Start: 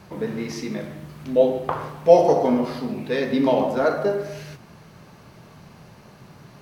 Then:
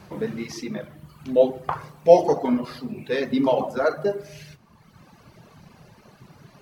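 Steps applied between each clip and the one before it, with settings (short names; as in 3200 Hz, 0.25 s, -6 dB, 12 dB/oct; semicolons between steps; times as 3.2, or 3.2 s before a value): reverb removal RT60 1.5 s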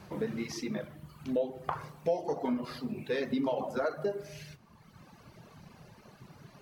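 compressor 5:1, threshold -24 dBFS, peak gain reduction 15.5 dB; gain -4 dB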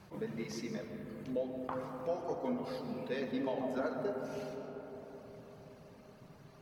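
digital reverb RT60 4.9 s, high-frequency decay 0.25×, pre-delay 90 ms, DRR 4 dB; attack slew limiter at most 290 dB/s; gain -6 dB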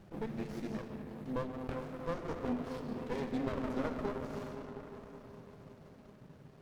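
running maximum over 33 samples; gain +1.5 dB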